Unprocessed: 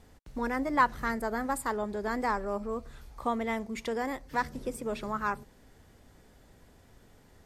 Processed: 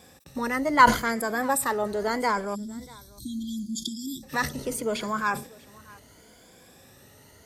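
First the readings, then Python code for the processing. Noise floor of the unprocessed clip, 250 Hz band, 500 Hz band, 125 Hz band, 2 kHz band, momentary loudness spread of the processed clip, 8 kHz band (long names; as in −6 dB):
−59 dBFS, +4.5 dB, +4.0 dB, +5.5 dB, +7.0 dB, 19 LU, +12.5 dB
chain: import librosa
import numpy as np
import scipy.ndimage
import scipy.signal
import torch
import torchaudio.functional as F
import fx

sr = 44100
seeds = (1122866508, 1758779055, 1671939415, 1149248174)

p1 = fx.spec_ripple(x, sr, per_octave=1.8, drift_hz=0.75, depth_db=11)
p2 = fx.high_shelf(p1, sr, hz=2400.0, db=9.0)
p3 = fx.level_steps(p2, sr, step_db=21)
p4 = p2 + (p3 * 10.0 ** (0.0 / 20.0))
p5 = fx.spec_erase(p4, sr, start_s=2.55, length_s=1.68, low_hz=360.0, high_hz=3200.0)
p6 = scipy.signal.sosfilt(scipy.signal.butter(2, 86.0, 'highpass', fs=sr, output='sos'), p5)
p7 = fx.peak_eq(p6, sr, hz=530.0, db=3.5, octaves=0.42)
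p8 = p7 + fx.echo_single(p7, sr, ms=641, db=-23.5, dry=0)
y = fx.sustainer(p8, sr, db_per_s=140.0)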